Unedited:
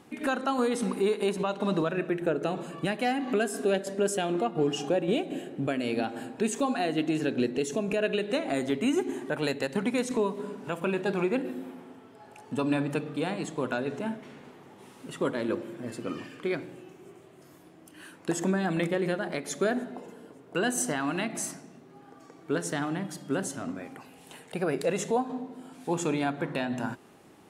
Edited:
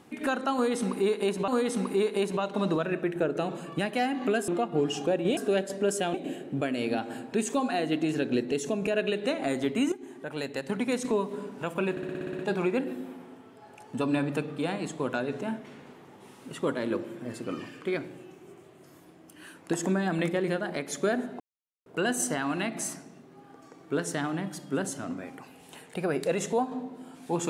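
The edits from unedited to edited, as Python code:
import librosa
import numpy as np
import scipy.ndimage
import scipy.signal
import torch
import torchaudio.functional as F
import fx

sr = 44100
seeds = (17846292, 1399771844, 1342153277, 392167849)

y = fx.edit(x, sr, fx.repeat(start_s=0.54, length_s=0.94, count=2),
    fx.move(start_s=3.54, length_s=0.77, to_s=5.2),
    fx.fade_in_from(start_s=8.98, length_s=1.07, floor_db=-14.0),
    fx.stutter(start_s=10.97, slice_s=0.06, count=9),
    fx.silence(start_s=19.98, length_s=0.46), tone=tone)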